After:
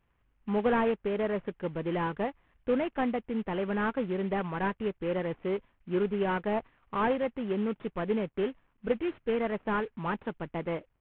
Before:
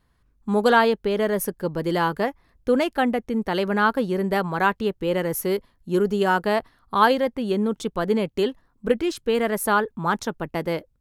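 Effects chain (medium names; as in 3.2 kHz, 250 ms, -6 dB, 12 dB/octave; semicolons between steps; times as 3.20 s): CVSD coder 16 kbps; trim -7 dB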